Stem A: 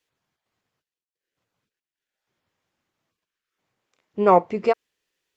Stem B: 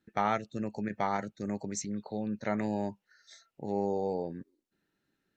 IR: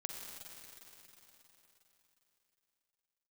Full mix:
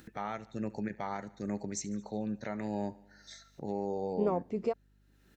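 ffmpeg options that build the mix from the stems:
-filter_complex "[0:a]acompressor=threshold=-18dB:ratio=6,equalizer=f=2k:w=0.39:g=-12.5,volume=-4.5dB[a];[1:a]alimiter=limit=-24dB:level=0:latency=1:release=319,volume=-1dB,asplit=2[b][c];[c]volume=-20dB,aecho=0:1:73|146|219|292|365|438|511|584:1|0.56|0.314|0.176|0.0983|0.0551|0.0308|0.0173[d];[a][b][d]amix=inputs=3:normalize=0,acompressor=mode=upward:threshold=-43dB:ratio=2.5,aeval=exprs='val(0)+0.000562*(sin(2*PI*50*n/s)+sin(2*PI*2*50*n/s)/2+sin(2*PI*3*50*n/s)/3+sin(2*PI*4*50*n/s)/4+sin(2*PI*5*50*n/s)/5)':c=same"

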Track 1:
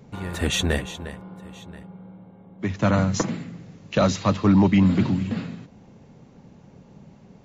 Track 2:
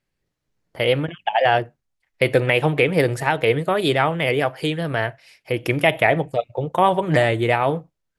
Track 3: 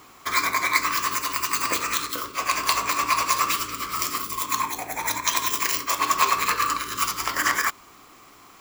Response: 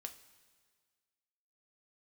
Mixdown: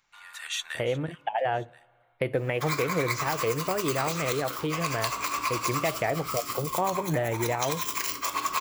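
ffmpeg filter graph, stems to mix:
-filter_complex "[0:a]highpass=f=1.2k:w=0.5412,highpass=f=1.2k:w=1.3066,volume=-6.5dB,asplit=2[a][b];[b]volume=-16dB[c];[1:a]equalizer=f=6k:t=o:w=2:g=-14.5,volume=-4.5dB,asplit=2[d][e];[e]volume=-11.5dB[f];[2:a]bandreject=f=1.8k:w=13,adelay=2350,volume=-3dB[g];[3:a]atrim=start_sample=2205[h];[c][f]amix=inputs=2:normalize=0[i];[i][h]afir=irnorm=-1:irlink=0[j];[a][d][g][j]amix=inputs=4:normalize=0,acompressor=threshold=-28dB:ratio=2"

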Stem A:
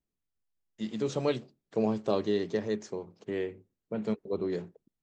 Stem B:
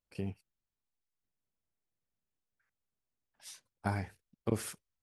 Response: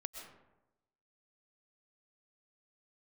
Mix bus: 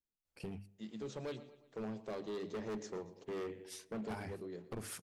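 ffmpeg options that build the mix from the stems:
-filter_complex "[0:a]acontrast=21,volume=-9.5dB,afade=t=in:st=2.3:d=0.45:silence=0.398107,afade=t=out:st=3.93:d=0.38:silence=0.298538,asplit=3[a][b][c];[b]volume=-14dB[d];[c]volume=-16.5dB[e];[1:a]acompressor=threshold=-35dB:ratio=3,adelay=250,volume=-1dB,asplit=2[f][g];[g]volume=-21dB[h];[2:a]atrim=start_sample=2205[i];[d][h]amix=inputs=2:normalize=0[j];[j][i]afir=irnorm=-1:irlink=0[k];[e]aecho=0:1:118|236|354|472|590|708|826:1|0.47|0.221|0.104|0.0488|0.0229|0.0108[l];[a][f][k][l]amix=inputs=4:normalize=0,bandreject=f=50:t=h:w=6,bandreject=f=100:t=h:w=6,bandreject=f=150:t=h:w=6,bandreject=f=200:t=h:w=6,bandreject=f=250:t=h:w=6,bandreject=f=300:t=h:w=6,asoftclip=type=hard:threshold=-37.5dB"

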